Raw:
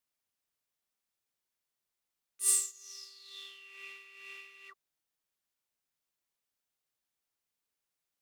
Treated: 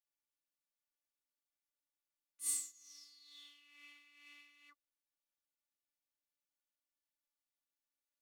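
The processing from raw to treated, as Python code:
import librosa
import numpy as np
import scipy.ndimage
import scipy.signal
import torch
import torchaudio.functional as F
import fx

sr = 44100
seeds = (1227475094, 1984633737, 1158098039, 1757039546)

y = x + 0.51 * np.pad(x, (int(5.6 * sr / 1000.0), 0))[:len(x)]
y = fx.robotise(y, sr, hz=291.0)
y = F.gain(torch.from_numpy(y), -8.5).numpy()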